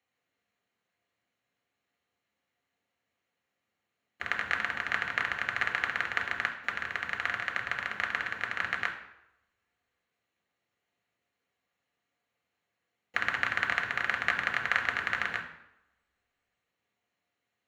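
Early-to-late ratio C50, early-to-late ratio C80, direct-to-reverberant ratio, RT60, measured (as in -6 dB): 9.0 dB, 11.5 dB, 1.5 dB, 0.85 s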